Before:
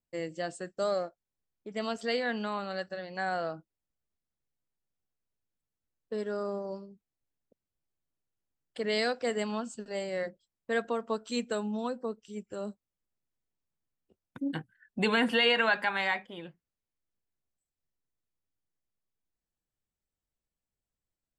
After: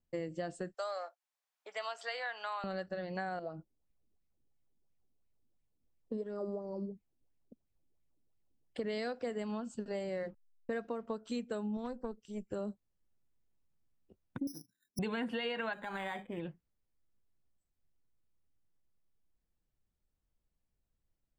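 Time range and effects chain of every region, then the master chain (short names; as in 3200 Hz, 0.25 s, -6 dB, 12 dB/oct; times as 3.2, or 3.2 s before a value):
0.74–2.64 HPF 740 Hz 24 dB/oct + three-band squash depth 40%
3.39–8.78 compressor 2:1, threshold -45 dBFS + bell 1600 Hz -10.5 dB 1.1 oct + LFO bell 2.9 Hz 230–2300 Hz +12 dB
10.16–11.06 Butterworth band-stop 3300 Hz, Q 7.1 + backlash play -54 dBFS
11.77–12.51 HPF 55 Hz + high shelf 5400 Hz +6.5 dB + tube stage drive 26 dB, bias 0.8
14.47–14.99 band-pass 290 Hz, Q 2.5 + compressor 2:1, threshold -52 dBFS + careless resampling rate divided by 8×, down filtered, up zero stuff
15.73–16.4 compressor 2.5:1, threshold -32 dBFS + decimation joined by straight lines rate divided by 8×
whole clip: tilt -2 dB/oct; compressor 6:1, threshold -36 dBFS; gain +1 dB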